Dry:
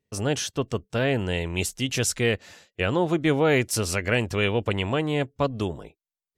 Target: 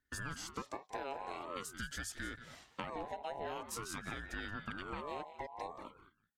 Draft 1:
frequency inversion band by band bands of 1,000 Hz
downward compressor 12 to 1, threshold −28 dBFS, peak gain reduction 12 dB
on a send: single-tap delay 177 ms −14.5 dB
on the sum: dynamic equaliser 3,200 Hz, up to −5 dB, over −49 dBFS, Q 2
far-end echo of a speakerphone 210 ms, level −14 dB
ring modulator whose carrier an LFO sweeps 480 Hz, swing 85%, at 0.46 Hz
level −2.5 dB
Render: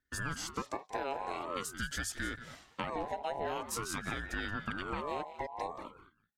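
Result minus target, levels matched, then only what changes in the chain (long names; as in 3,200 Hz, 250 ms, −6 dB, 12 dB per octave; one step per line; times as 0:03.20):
downward compressor: peak gain reduction −5.5 dB
change: downward compressor 12 to 1, threshold −34 dBFS, peak gain reduction 17.5 dB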